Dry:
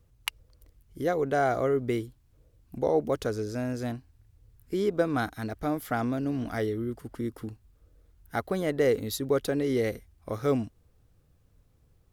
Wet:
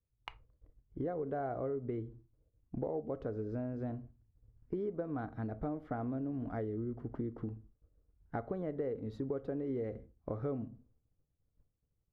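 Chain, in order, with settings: Bessel low-pass 840 Hz, order 2; simulated room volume 180 m³, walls furnished, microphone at 0.32 m; compression 6:1, threshold -36 dBFS, peak gain reduction 15 dB; expander -49 dBFS; trim +1 dB

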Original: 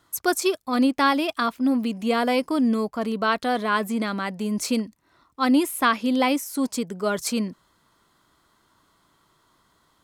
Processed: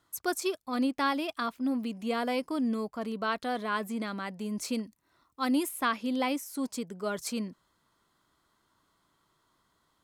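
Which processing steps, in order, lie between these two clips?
4.83–5.69 s: treble shelf 7.6 kHz +8 dB; trim -8.5 dB

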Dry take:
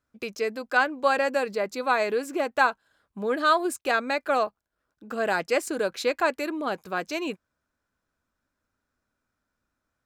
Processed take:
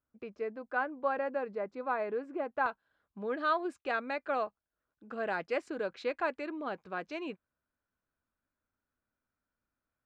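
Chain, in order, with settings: low-pass 1.5 kHz 12 dB/octave, from 2.66 s 3 kHz; trim -8.5 dB

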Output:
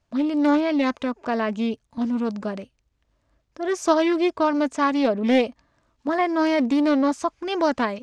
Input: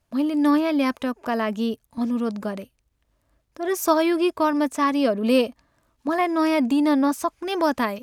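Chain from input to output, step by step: low-pass 7.3 kHz 24 dB/octave; loudspeaker Doppler distortion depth 0.2 ms

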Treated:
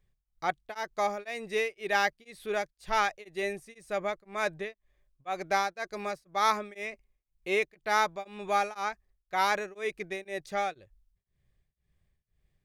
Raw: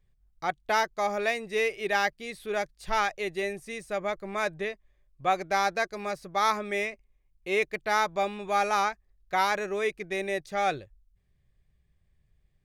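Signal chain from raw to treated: bass shelf 140 Hz -4 dB; tremolo of two beating tones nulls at 2 Hz

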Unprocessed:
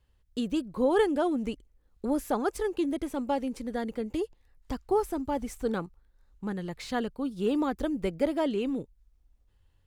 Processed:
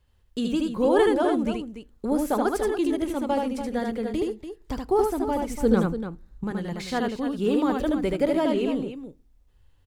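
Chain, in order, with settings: 5.52–6.44 s: bass shelf 410 Hz +9 dB; loudspeakers at several distances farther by 26 m -3 dB, 99 m -10 dB; on a send at -19 dB: reverberation RT60 0.30 s, pre-delay 5 ms; on the sum: trim +3 dB

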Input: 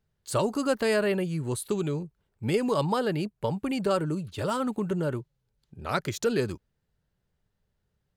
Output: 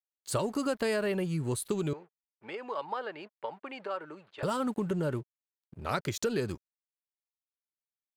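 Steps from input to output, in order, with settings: compression, threshold -26 dBFS, peak gain reduction 6 dB; crossover distortion -55.5 dBFS; 1.93–4.43 s: band-pass 690–2300 Hz

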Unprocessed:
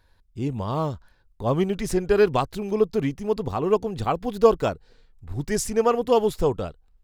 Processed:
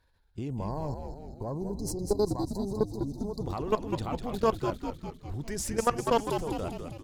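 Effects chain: level held to a coarse grid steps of 17 dB; dynamic bell 460 Hz, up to -7 dB, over -33 dBFS, Q 0.97; spectral selection erased 0.50–3.43 s, 1.1–4 kHz; Chebyshev shaper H 4 -21 dB, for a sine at -11 dBFS; on a send: frequency-shifting echo 200 ms, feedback 59%, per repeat -91 Hz, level -6 dB

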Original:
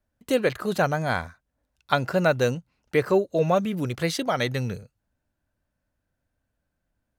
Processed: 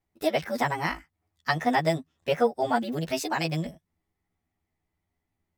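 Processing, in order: short-time spectra conjugated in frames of 32 ms; tape speed +29%

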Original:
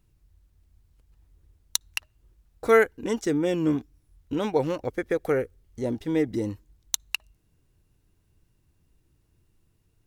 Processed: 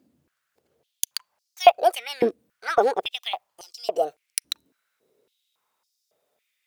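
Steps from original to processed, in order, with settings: gliding tape speed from 173% -> 129%; step-sequenced high-pass 3.6 Hz 280–5100 Hz; trim +1 dB

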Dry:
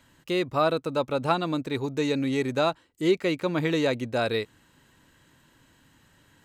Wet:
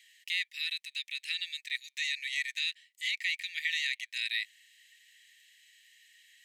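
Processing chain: Chebyshev high-pass 1.8 kHz, order 8; treble shelf 5.2 kHz -7 dB; in parallel at +2 dB: peak limiter -30.5 dBFS, peak gain reduction 8.5 dB

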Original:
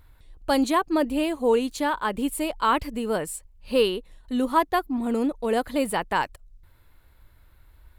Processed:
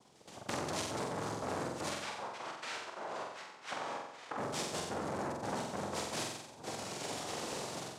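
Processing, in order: level rider gain up to 14 dB; peak limiter -12 dBFS, peak gain reduction 11 dB; level held to a coarse grid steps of 23 dB; inverted gate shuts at -32 dBFS, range -28 dB; noise-vocoded speech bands 2; 1.89–4.38 s: band-pass filter 1.6 kHz, Q 0.96; flutter echo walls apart 7.8 m, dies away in 0.81 s; transformer saturation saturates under 2.7 kHz; trim +14.5 dB

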